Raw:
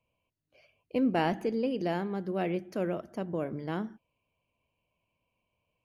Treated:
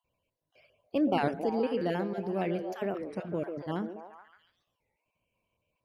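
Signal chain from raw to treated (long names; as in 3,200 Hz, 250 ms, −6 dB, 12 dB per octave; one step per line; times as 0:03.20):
time-frequency cells dropped at random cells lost 22%
on a send: echo through a band-pass that steps 142 ms, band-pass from 430 Hz, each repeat 0.7 octaves, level −4 dB
on the sum: wow of a warped record 33 1/3 rpm, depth 250 cents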